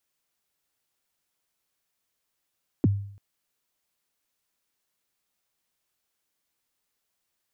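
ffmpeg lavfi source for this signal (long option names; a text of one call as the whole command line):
ffmpeg -f lavfi -i "aevalsrc='0.188*pow(10,-3*t/0.6)*sin(2*PI*(370*0.027/log(100/370)*(exp(log(100/370)*min(t,0.027)/0.027)-1)+100*max(t-0.027,0)))':duration=0.34:sample_rate=44100" out.wav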